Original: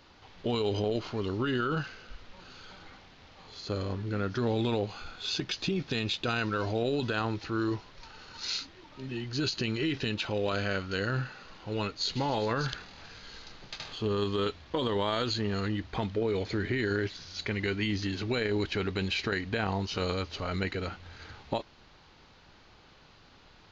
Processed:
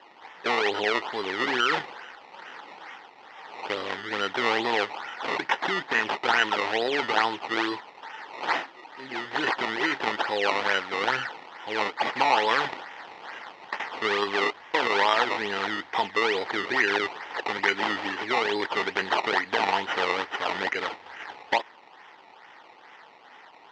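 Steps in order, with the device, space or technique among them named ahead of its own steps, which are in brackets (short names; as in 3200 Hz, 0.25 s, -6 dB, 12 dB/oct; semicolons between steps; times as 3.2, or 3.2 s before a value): circuit-bent sampling toy (decimation with a swept rate 19×, swing 100% 2.3 Hz; speaker cabinet 510–4800 Hz, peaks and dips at 590 Hz -4 dB, 870 Hz +7 dB, 1900 Hz +9 dB, 3100 Hz +4 dB); gain +7.5 dB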